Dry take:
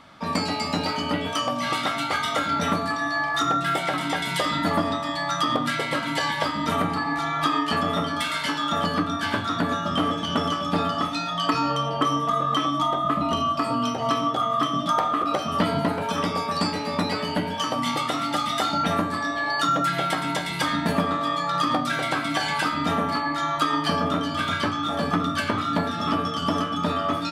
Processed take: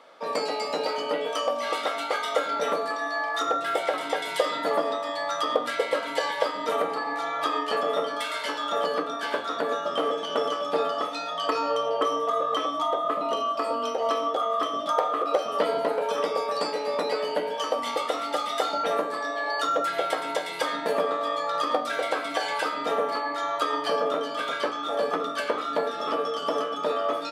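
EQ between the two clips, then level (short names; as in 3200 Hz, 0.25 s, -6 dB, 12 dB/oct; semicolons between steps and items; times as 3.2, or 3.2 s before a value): resonant high-pass 480 Hz, resonance Q 4.8; -5.0 dB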